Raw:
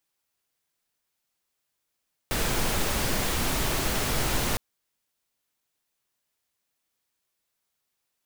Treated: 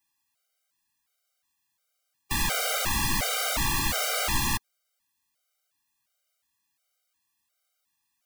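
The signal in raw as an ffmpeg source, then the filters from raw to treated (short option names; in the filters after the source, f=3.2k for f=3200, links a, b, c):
-f lavfi -i "anoisesrc=c=pink:a=0.257:d=2.26:r=44100:seed=1"
-filter_complex "[0:a]equalizer=f=400:w=5.1:g=-13,acrossover=split=570[a][b];[b]acontrast=31[c];[a][c]amix=inputs=2:normalize=0,afftfilt=real='re*gt(sin(2*PI*1.4*pts/sr)*(1-2*mod(floor(b*sr/1024/400),2)),0)':imag='im*gt(sin(2*PI*1.4*pts/sr)*(1-2*mod(floor(b*sr/1024/400),2)),0)':win_size=1024:overlap=0.75"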